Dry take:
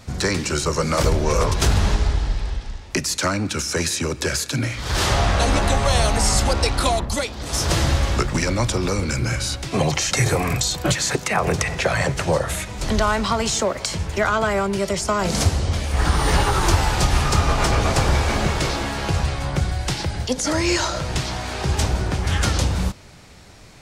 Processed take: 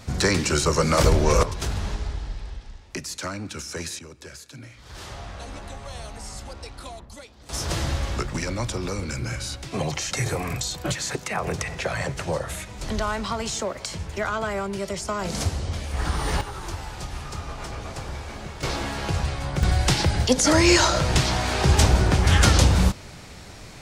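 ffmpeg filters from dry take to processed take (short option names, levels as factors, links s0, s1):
-af "asetnsamples=n=441:p=0,asendcmd='1.43 volume volume -10dB;3.99 volume volume -19dB;7.49 volume volume -7dB;16.41 volume volume -15.5dB;18.63 volume volume -4dB;19.63 volume volume 3.5dB',volume=1.06"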